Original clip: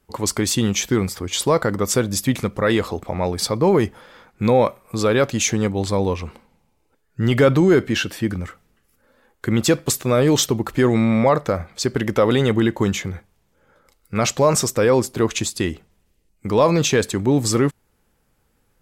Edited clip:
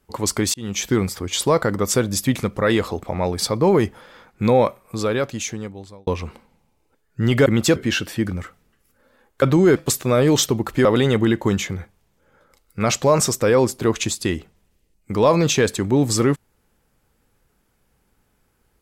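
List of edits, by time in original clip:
0:00.54–0:00.88: fade in
0:04.58–0:06.07: fade out
0:07.46–0:07.80: swap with 0:09.46–0:09.76
0:10.85–0:12.20: remove

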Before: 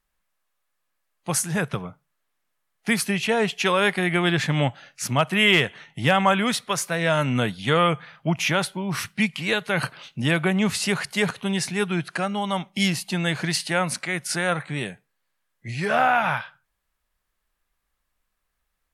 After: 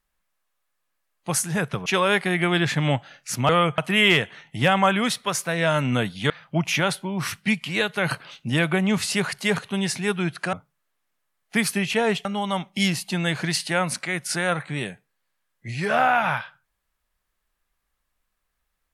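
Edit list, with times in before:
0:01.86–0:03.58: move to 0:12.25
0:07.73–0:08.02: move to 0:05.21

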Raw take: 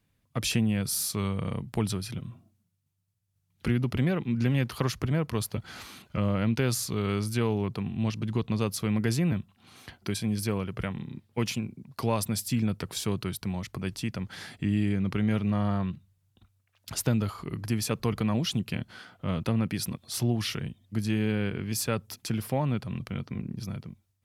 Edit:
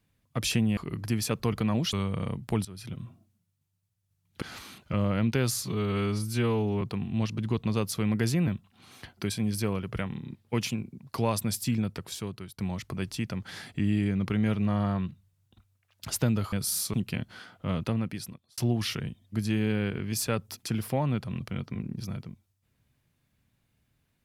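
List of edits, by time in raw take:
0:00.77–0:01.18: swap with 0:17.37–0:18.53
0:01.90–0:02.26: fade in, from −20.5 dB
0:03.67–0:05.66: remove
0:06.87–0:07.66: time-stretch 1.5×
0:12.49–0:13.43: fade out, to −13.5 dB
0:19.37–0:20.17: fade out

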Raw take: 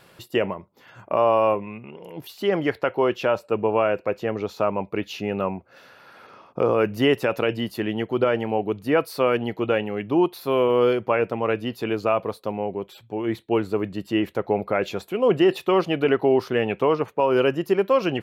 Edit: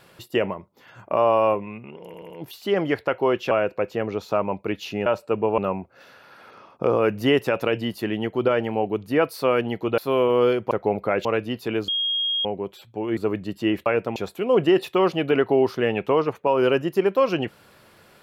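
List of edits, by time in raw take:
0:02.06: stutter 0.08 s, 4 plays
0:03.27–0:03.79: move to 0:05.34
0:09.74–0:10.38: remove
0:11.11–0:11.41: swap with 0:14.35–0:14.89
0:12.04–0:12.61: beep over 3,260 Hz −21 dBFS
0:13.33–0:13.66: remove

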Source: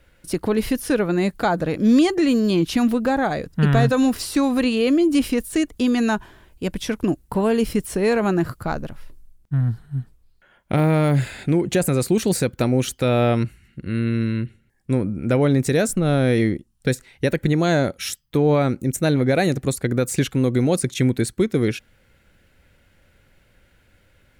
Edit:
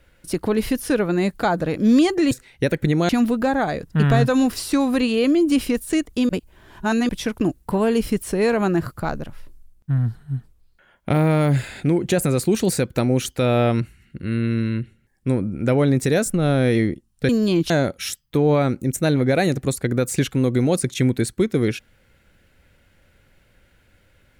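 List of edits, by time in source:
0:02.31–0:02.72: swap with 0:16.92–0:17.70
0:05.92–0:06.72: reverse

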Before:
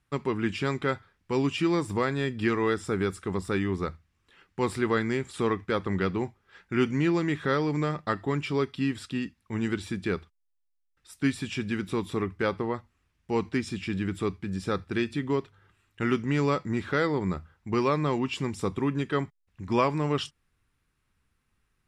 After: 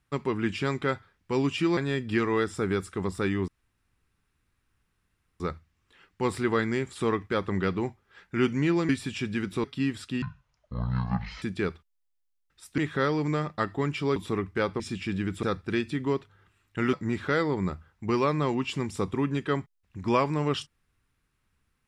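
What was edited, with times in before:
0:01.77–0:02.07: remove
0:03.78: splice in room tone 1.92 s
0:07.27–0:08.65: swap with 0:11.25–0:12.00
0:09.23–0:09.89: play speed 55%
0:12.64–0:13.61: remove
0:14.24–0:14.66: remove
0:16.16–0:16.57: remove

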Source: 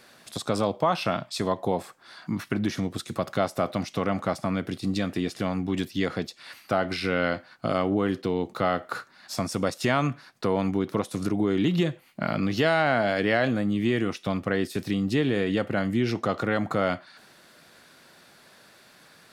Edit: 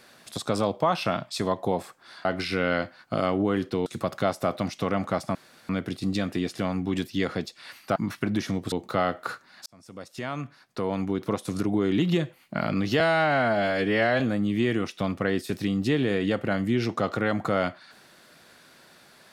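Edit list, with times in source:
0:02.25–0:03.01: swap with 0:06.77–0:08.38
0:04.50: splice in room tone 0.34 s
0:09.32–0:11.12: fade in linear
0:12.66–0:13.46: time-stretch 1.5×

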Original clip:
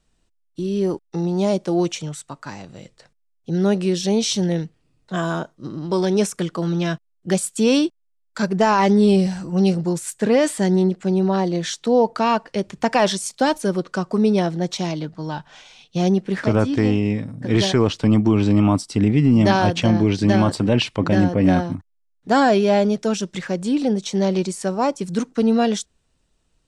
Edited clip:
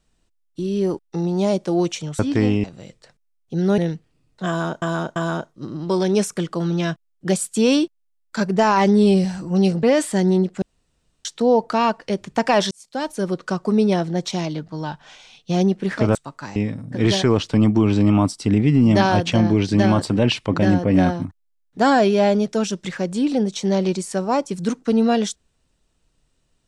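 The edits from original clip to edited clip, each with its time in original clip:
0:02.19–0:02.60: swap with 0:16.61–0:17.06
0:03.74–0:04.48: remove
0:05.18–0:05.52: repeat, 3 plays
0:09.85–0:10.29: remove
0:11.08–0:11.71: fill with room tone
0:13.17–0:13.84: fade in

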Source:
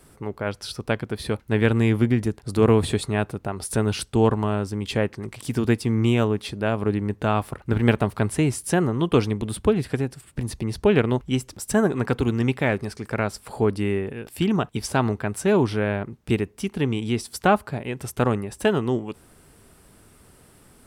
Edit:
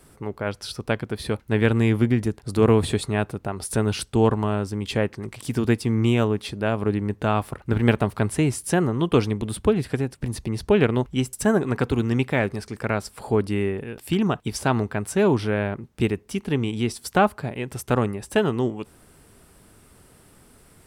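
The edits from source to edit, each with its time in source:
truncate silence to 0.11 s

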